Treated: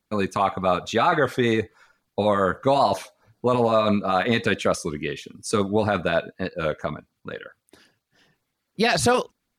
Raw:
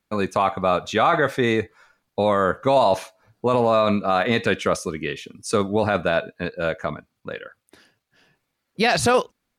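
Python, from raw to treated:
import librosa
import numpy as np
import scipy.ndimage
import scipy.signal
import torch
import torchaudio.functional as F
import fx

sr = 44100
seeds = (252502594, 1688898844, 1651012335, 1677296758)

y = fx.filter_lfo_notch(x, sr, shape='sine', hz=7.5, low_hz=530.0, high_hz=2800.0, q=1.6)
y = fx.record_warp(y, sr, rpm=33.33, depth_cents=100.0)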